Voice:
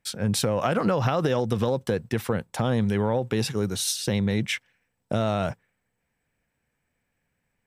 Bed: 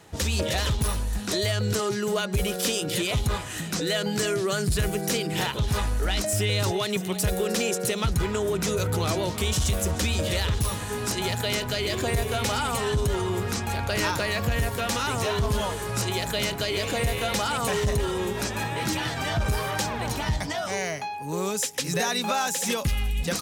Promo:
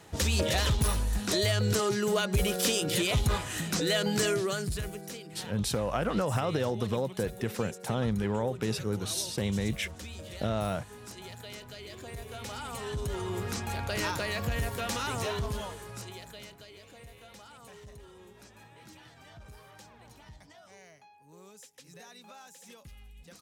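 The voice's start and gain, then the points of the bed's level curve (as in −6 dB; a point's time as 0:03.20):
5.30 s, −6.0 dB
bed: 0:04.29 −1.5 dB
0:05.22 −17.5 dB
0:12.05 −17.5 dB
0:13.44 −6 dB
0:15.27 −6 dB
0:16.81 −25 dB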